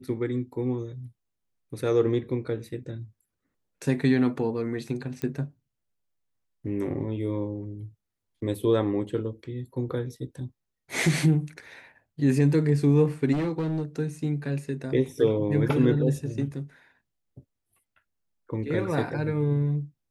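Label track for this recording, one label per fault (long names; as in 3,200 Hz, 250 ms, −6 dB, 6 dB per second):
5.220000	5.220000	click −18 dBFS
13.320000	13.830000	clipping −24 dBFS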